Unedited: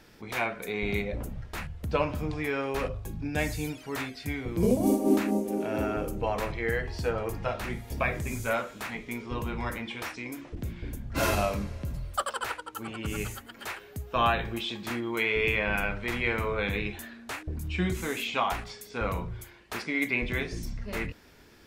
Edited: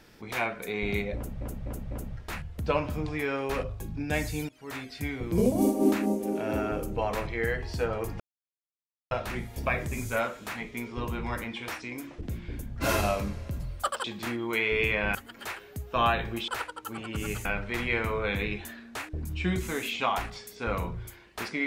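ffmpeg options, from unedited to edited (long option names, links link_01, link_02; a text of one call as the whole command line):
ffmpeg -i in.wav -filter_complex "[0:a]asplit=10[link_01][link_02][link_03][link_04][link_05][link_06][link_07][link_08][link_09][link_10];[link_01]atrim=end=1.412[link_11];[link_02]atrim=start=1.158:end=1.412[link_12];[link_03]atrim=start=1.158:end=1.412[link_13];[link_04]atrim=start=1.158:end=3.74,asetpts=PTS-STARTPTS,afade=type=out:start_time=2.578:duration=0.004:curve=hsin:silence=0.11885[link_14];[link_05]atrim=start=3.74:end=7.45,asetpts=PTS-STARTPTS,afade=type=in:duration=0.46:silence=0.11885,afade=type=out:start_time=3.706:duration=0.004:curve=hsin,apad=pad_dur=0.91[link_15];[link_06]atrim=start=7.45:end=12.382,asetpts=PTS-STARTPTS,afade=type=in:duration=0.004:curve=hsin[link_16];[link_07]atrim=start=14.678:end=15.792[link_17];[link_08]atrim=start=13.348:end=14.682[link_18];[link_09]atrim=start=12.378:end=13.352[link_19];[link_10]atrim=start=15.788[link_20];[link_11][link_12]acrossfade=duration=0.004:curve1=hsin:curve2=hsin[link_21];[link_21][link_13]acrossfade=duration=0.004:curve1=hsin:curve2=hsin[link_22];[link_14][link_15][link_16]concat=n=3:v=0:a=1[link_23];[link_22][link_23]acrossfade=duration=0.004:curve1=hsin:curve2=hsin[link_24];[link_24][link_17]acrossfade=duration=0.004:curve1=hsin:curve2=hsin[link_25];[link_25][link_18]acrossfade=duration=0.004:curve1=hsin:curve2=hsin[link_26];[link_26][link_19]acrossfade=duration=0.004:curve1=hsin:curve2=hsin[link_27];[link_27][link_20]acrossfade=duration=0.004:curve1=hsin:curve2=hsin" out.wav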